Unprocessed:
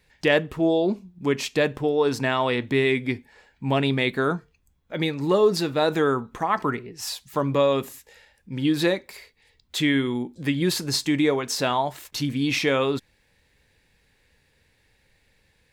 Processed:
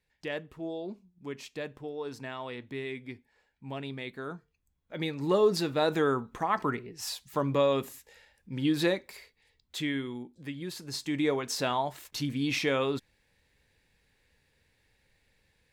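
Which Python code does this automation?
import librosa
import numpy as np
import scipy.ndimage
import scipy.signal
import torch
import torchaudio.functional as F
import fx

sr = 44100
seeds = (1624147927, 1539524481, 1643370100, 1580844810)

y = fx.gain(x, sr, db=fx.line((4.21, -16.0), (5.35, -5.0), (9.11, -5.0), (10.72, -16.0), (11.3, -6.0)))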